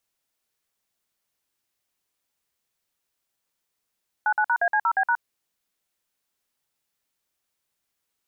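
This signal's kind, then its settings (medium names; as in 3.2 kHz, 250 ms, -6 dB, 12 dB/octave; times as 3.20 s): DTMF "99#AC0B#", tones 66 ms, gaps 52 ms, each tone -21 dBFS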